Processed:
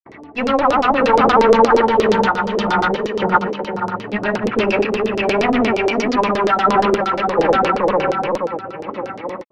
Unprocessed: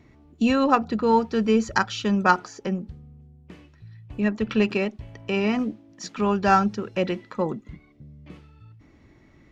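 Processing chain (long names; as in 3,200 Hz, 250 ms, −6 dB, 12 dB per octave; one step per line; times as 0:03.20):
feedback delay that plays each chunk backwards 254 ms, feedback 64%, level −2.5 dB
low-shelf EQ 140 Hz −9 dB
mid-hump overdrive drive 35 dB, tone 1,400 Hz, clips at −2.5 dBFS
sample-and-hold tremolo
granular cloud, pitch spread up and down by 0 semitones
auto-filter low-pass saw down 8.5 Hz 380–5,800 Hz
level −2 dB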